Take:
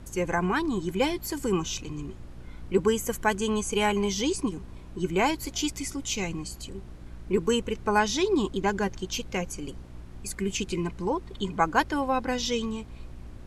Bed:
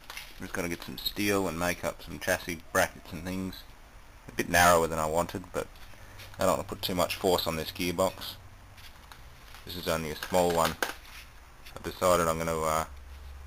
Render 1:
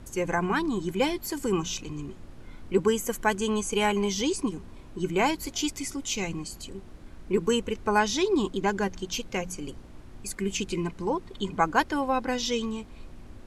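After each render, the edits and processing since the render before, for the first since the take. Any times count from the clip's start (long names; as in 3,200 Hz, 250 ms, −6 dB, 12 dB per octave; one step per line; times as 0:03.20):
hum removal 60 Hz, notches 3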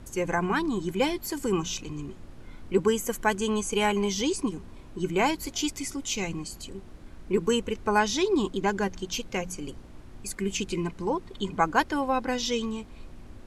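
no processing that can be heard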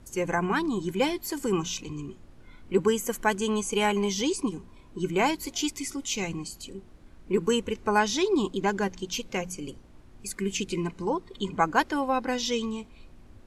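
noise reduction from a noise print 6 dB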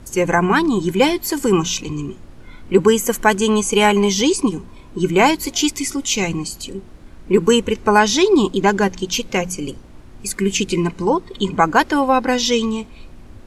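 level +11 dB
brickwall limiter −1 dBFS, peak gain reduction 3 dB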